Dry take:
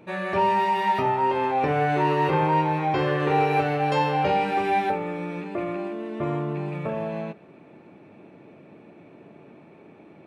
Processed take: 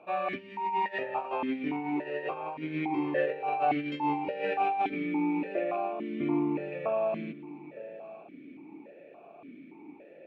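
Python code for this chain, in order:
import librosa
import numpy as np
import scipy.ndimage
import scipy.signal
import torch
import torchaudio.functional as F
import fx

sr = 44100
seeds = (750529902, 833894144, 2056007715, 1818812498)

y = fx.over_compress(x, sr, threshold_db=-25.0, ratio=-0.5)
y = y + 10.0 ** (-15.0 / 20.0) * np.pad(y, (int(914 * sr / 1000.0), 0))[:len(y)]
y = fx.vowel_held(y, sr, hz=3.5)
y = F.gain(torch.from_numpy(y), 6.5).numpy()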